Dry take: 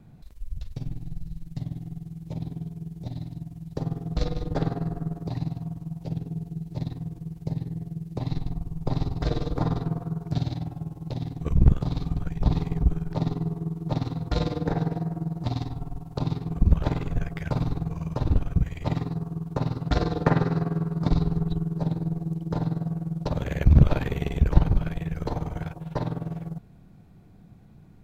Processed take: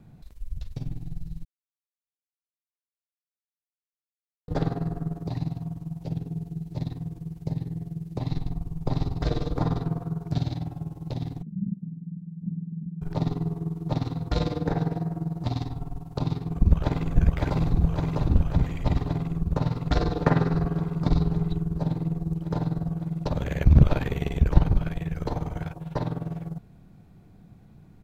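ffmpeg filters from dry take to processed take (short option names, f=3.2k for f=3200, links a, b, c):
-filter_complex "[0:a]asplit=3[a][b][c];[a]afade=t=out:st=11.41:d=0.02[d];[b]asuperpass=centerf=190:order=4:qfactor=3.7,afade=t=in:st=11.41:d=0.02,afade=t=out:st=13.01:d=0.02[e];[c]afade=t=in:st=13.01:d=0.02[f];[d][e][f]amix=inputs=3:normalize=0,asplit=2[g][h];[h]afade=t=in:st=16.37:d=0.01,afade=t=out:st=17.16:d=0.01,aecho=0:1:560|1120|1680|2240|2800|3360|3920|4480|5040|5600|6160|6720:0.841395|0.673116|0.538493|0.430794|0.344635|0.275708|0.220567|0.176453|0.141163|0.11293|0.0903441|0.0722753[i];[g][i]amix=inputs=2:normalize=0,asplit=3[j][k][l];[j]atrim=end=1.45,asetpts=PTS-STARTPTS,afade=t=out:st=1.446:d=0.004:c=hsin[m];[k]atrim=start=1.45:end=4.48,asetpts=PTS-STARTPTS,volume=0[n];[l]atrim=start=4.48,asetpts=PTS-STARTPTS,afade=t=in:d=0.004:c=hsin[o];[m][n][o]concat=n=3:v=0:a=1"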